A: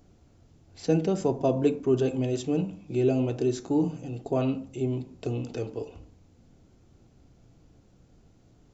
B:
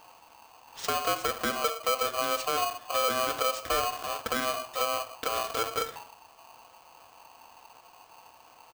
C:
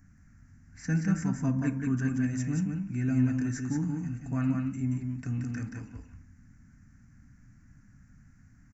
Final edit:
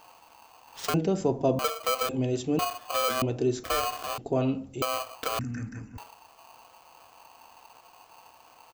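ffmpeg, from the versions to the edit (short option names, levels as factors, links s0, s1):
-filter_complex "[0:a]asplit=4[s0][s1][s2][s3];[1:a]asplit=6[s4][s5][s6][s7][s8][s9];[s4]atrim=end=0.942[s10];[s0]atrim=start=0.938:end=1.592[s11];[s5]atrim=start=1.588:end=2.092[s12];[s1]atrim=start=2.088:end=2.592[s13];[s6]atrim=start=2.588:end=3.222[s14];[s2]atrim=start=3.218:end=3.642[s15];[s7]atrim=start=3.638:end=4.182[s16];[s3]atrim=start=4.178:end=4.822[s17];[s8]atrim=start=4.818:end=5.392[s18];[2:a]atrim=start=5.388:end=5.982[s19];[s9]atrim=start=5.978[s20];[s10][s11]acrossfade=d=0.004:c1=hsin:c2=hsin[s21];[s21][s12]acrossfade=d=0.004:c1=hsin:c2=hsin[s22];[s22][s13]acrossfade=d=0.004:c1=hsin:c2=hsin[s23];[s23][s14]acrossfade=d=0.004:c1=hsin:c2=hsin[s24];[s24][s15]acrossfade=d=0.004:c1=hsin:c2=hsin[s25];[s25][s16]acrossfade=d=0.004:c1=hsin:c2=hsin[s26];[s26][s17]acrossfade=d=0.004:c1=hsin:c2=hsin[s27];[s27][s18]acrossfade=d=0.004:c1=hsin:c2=hsin[s28];[s28][s19]acrossfade=d=0.004:c1=hsin:c2=hsin[s29];[s29][s20]acrossfade=d=0.004:c1=hsin:c2=hsin"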